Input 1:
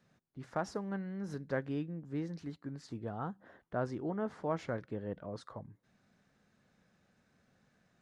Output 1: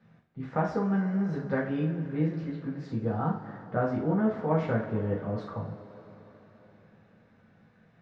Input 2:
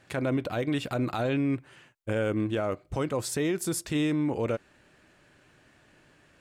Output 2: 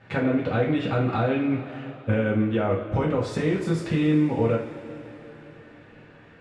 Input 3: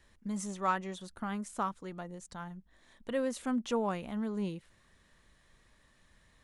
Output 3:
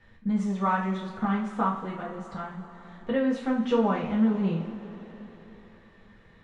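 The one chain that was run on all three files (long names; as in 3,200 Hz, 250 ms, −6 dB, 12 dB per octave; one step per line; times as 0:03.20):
low-pass filter 2,700 Hz 12 dB per octave
downward compressor, threshold −29 dBFS
coupled-rooms reverb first 0.41 s, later 4.2 s, from −18 dB, DRR −5 dB
level +3 dB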